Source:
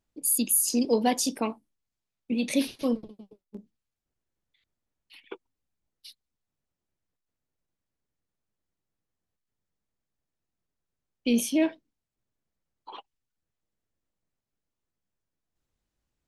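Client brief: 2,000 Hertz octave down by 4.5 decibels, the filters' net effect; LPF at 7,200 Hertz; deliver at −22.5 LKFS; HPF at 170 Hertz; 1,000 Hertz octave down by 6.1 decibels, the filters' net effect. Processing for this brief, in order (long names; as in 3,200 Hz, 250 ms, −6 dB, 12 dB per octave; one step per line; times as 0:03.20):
high-pass filter 170 Hz
low-pass filter 7,200 Hz
parametric band 1,000 Hz −9 dB
parametric band 2,000 Hz −4 dB
level +7 dB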